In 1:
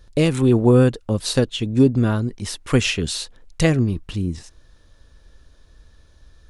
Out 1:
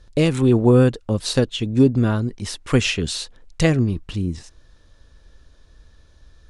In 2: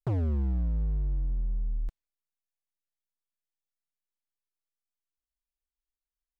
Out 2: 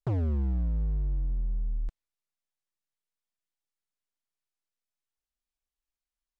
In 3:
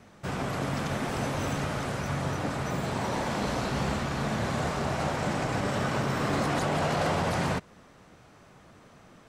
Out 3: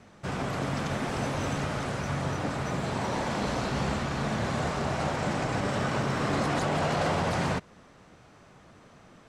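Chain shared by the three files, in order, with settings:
low-pass filter 9,700 Hz 12 dB per octave

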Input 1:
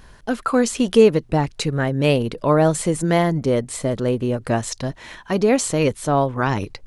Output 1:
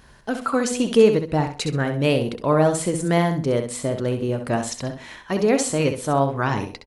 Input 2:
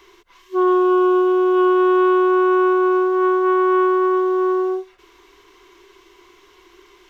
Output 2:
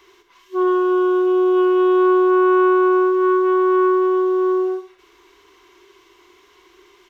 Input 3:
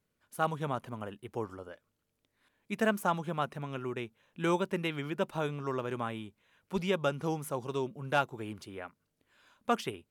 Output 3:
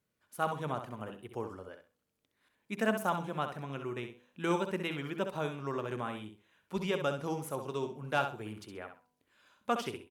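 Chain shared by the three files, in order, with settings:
high-pass filter 62 Hz 6 dB per octave
hum removal 82.2 Hz, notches 13
on a send: repeating echo 65 ms, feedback 23%, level −8 dB
on the sum: level −2 dB

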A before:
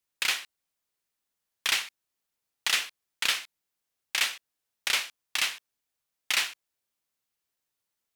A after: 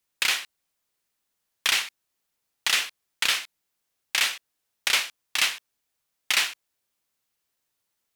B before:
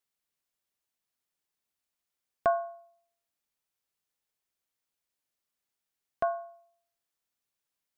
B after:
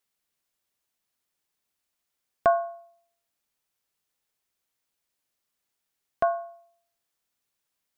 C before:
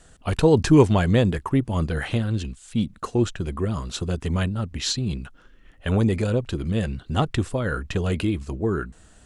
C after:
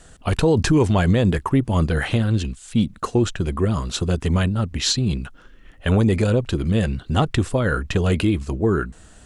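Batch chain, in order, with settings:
brickwall limiter −14 dBFS
level +5 dB

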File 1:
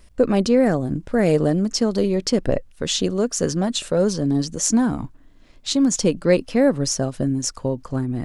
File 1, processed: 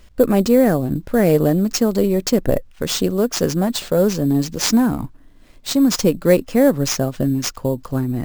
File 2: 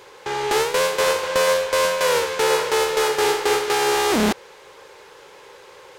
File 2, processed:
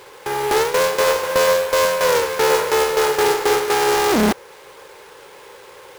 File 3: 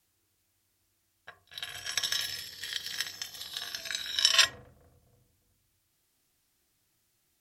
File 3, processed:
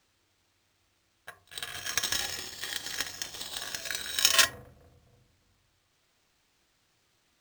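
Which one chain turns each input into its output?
dynamic equaliser 3,300 Hz, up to −4 dB, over −40 dBFS, Q 1.1
sample-rate reduction 12,000 Hz, jitter 0%
level +3 dB

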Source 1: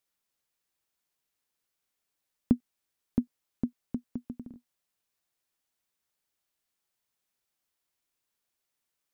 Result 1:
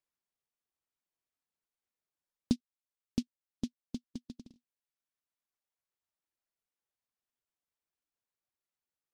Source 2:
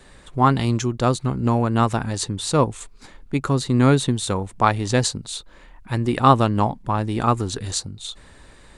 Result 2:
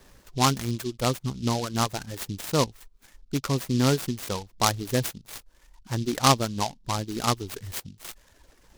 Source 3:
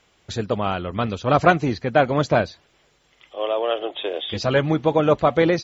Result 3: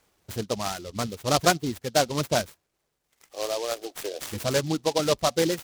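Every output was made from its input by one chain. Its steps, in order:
reverb reduction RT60 1.5 s
low-pass filter 6,000 Hz 12 dB per octave
short delay modulated by noise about 4,200 Hz, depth 0.094 ms
level −5 dB

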